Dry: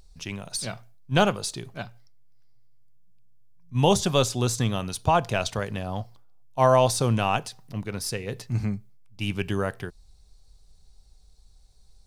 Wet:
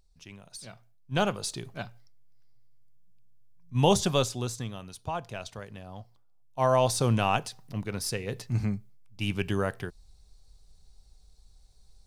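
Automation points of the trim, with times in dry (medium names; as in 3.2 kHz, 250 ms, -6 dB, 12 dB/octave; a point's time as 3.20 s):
0.67 s -13 dB
1.52 s -2 dB
4.07 s -2 dB
4.74 s -12.5 dB
5.93 s -12.5 dB
7.08 s -1.5 dB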